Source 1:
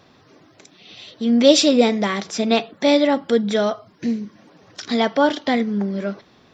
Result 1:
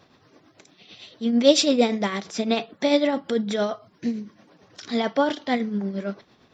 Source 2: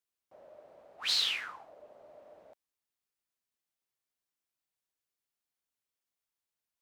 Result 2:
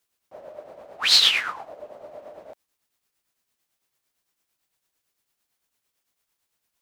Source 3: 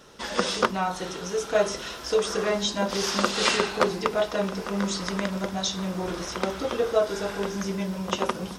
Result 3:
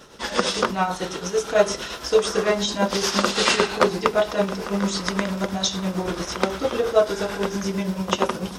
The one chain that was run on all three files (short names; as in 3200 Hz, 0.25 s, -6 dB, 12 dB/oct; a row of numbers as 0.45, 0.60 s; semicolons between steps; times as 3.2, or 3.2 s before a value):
tremolo triangle 8.9 Hz, depth 60%; normalise peaks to -3 dBFS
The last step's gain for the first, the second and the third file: -2.0, +16.0, +6.5 dB